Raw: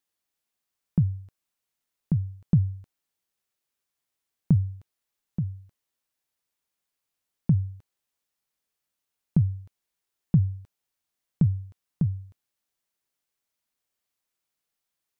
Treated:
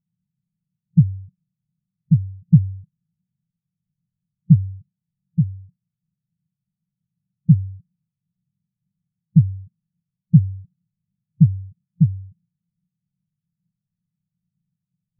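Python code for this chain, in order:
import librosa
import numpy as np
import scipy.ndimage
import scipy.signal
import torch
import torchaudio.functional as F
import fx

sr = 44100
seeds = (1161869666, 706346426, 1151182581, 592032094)

p1 = fx.bin_compress(x, sr, power=0.2)
p2 = fx.dynamic_eq(p1, sr, hz=190.0, q=3.3, threshold_db=-36.0, ratio=4.0, max_db=5)
p3 = fx.schmitt(p2, sr, flips_db=-25.0)
p4 = p2 + (p3 * 10.0 ** (-12.0 / 20.0))
p5 = fx.spectral_expand(p4, sr, expansion=4.0)
y = p5 * 10.0 ** (3.0 / 20.0)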